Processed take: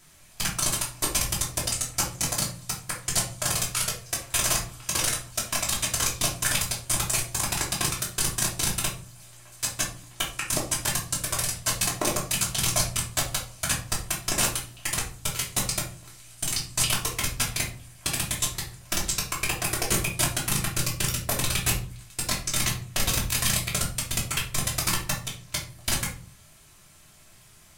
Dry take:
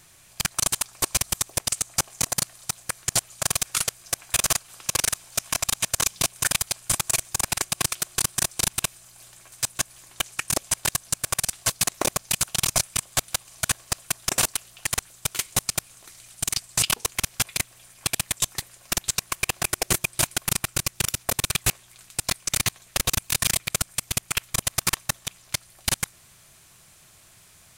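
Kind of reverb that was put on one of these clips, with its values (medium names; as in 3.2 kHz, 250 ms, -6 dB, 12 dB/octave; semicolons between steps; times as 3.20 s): simulated room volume 310 m³, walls furnished, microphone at 2.9 m; trim -5.5 dB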